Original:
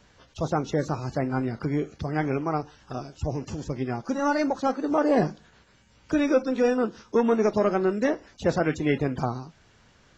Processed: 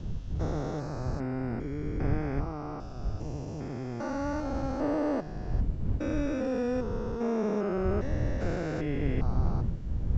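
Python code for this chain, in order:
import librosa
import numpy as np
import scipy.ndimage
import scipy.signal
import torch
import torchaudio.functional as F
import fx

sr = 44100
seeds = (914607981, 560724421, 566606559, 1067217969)

y = fx.spec_steps(x, sr, hold_ms=400)
y = fx.dmg_wind(y, sr, seeds[0], corner_hz=86.0, level_db=-29.0)
y = y * 10.0 ** (-3.5 / 20.0)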